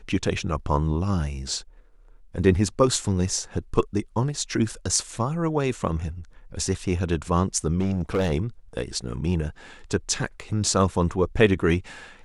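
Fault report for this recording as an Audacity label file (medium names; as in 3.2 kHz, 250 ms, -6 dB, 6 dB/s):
7.790000	8.330000	clipped -19 dBFS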